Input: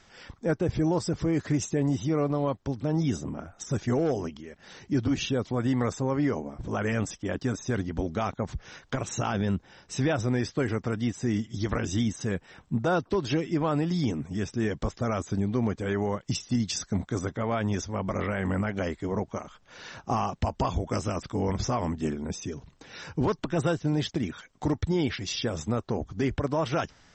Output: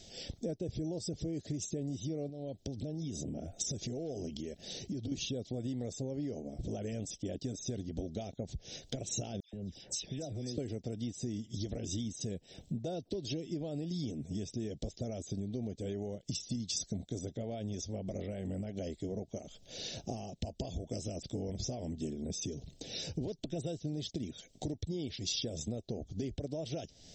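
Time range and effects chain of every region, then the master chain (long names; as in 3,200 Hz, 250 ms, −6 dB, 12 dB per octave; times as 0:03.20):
0:02.29–0:05.12: Butterworth band-reject 1,100 Hz, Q 5.1 + downward compressor 4 to 1, threshold −35 dBFS
0:09.40–0:10.58: noise gate −53 dBFS, range −11 dB + downward compressor 4 to 1, threshold −40 dBFS + all-pass dispersion lows, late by 132 ms, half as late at 2,300 Hz
whole clip: downward compressor 6 to 1, threshold −40 dBFS; drawn EQ curve 670 Hz 0 dB, 1,100 Hz −29 dB, 3,700 Hz +4 dB; level +4 dB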